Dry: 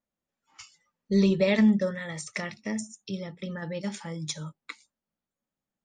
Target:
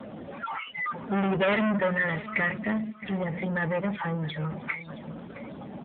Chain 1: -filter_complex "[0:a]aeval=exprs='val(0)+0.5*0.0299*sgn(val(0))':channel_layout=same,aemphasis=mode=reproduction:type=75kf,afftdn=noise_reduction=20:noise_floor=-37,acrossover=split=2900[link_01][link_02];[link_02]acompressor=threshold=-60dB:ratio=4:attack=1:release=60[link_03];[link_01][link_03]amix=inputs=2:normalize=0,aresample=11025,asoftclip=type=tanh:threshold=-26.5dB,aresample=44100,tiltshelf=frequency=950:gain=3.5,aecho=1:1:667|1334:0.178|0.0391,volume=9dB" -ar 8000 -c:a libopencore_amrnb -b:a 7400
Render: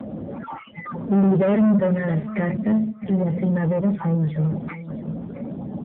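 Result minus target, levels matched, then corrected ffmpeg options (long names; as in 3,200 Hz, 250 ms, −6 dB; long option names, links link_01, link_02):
1,000 Hz band −7.5 dB
-filter_complex "[0:a]aeval=exprs='val(0)+0.5*0.0299*sgn(val(0))':channel_layout=same,aemphasis=mode=reproduction:type=75kf,afftdn=noise_reduction=20:noise_floor=-37,acrossover=split=2900[link_01][link_02];[link_02]acompressor=threshold=-60dB:ratio=4:attack=1:release=60[link_03];[link_01][link_03]amix=inputs=2:normalize=0,aresample=11025,asoftclip=type=tanh:threshold=-26.5dB,aresample=44100,tiltshelf=frequency=950:gain=-7.5,aecho=1:1:667|1334:0.178|0.0391,volume=9dB" -ar 8000 -c:a libopencore_amrnb -b:a 7400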